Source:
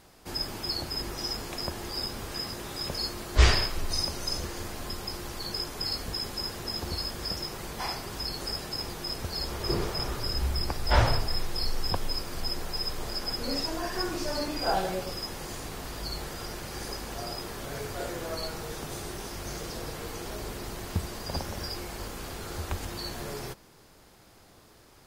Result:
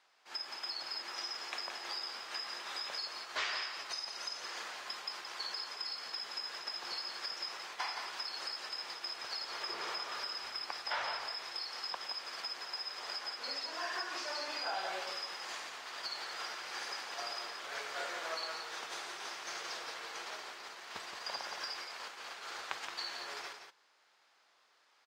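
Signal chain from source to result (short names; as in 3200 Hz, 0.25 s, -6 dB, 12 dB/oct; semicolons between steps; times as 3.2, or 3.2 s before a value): HPF 1100 Hz 12 dB/oct; gate -42 dBFS, range -14 dB; high shelf 11000 Hz +11 dB; compressor, threshold -40 dBFS, peak gain reduction 16.5 dB; air absorption 150 m; echo 0.172 s -7.5 dB; gain +7.5 dB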